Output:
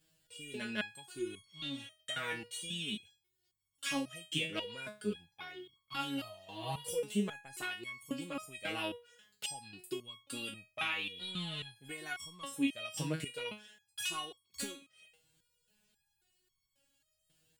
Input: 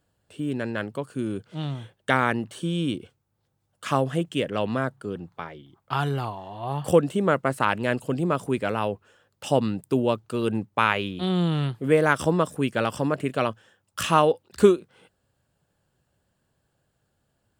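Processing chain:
drawn EQ curve 200 Hz 0 dB, 1,200 Hz −6 dB, 2,500 Hz +10 dB
downward compressor, threshold −27 dBFS, peak gain reduction 14.5 dB
step-sequenced resonator 3.7 Hz 160–1,100 Hz
level +8 dB

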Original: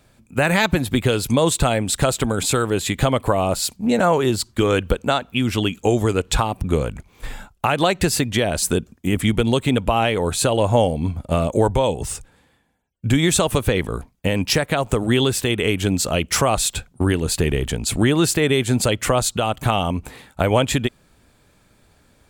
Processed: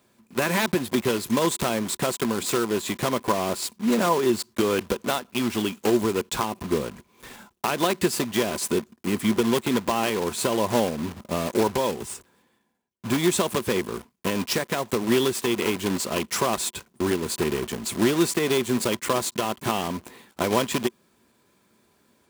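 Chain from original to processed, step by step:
one scale factor per block 3 bits
high-pass filter 61 Hz
low-shelf EQ 160 Hz −11.5 dB
hollow resonant body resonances 220/360/1,000 Hz, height 10 dB, ringing for 45 ms
level −7.5 dB

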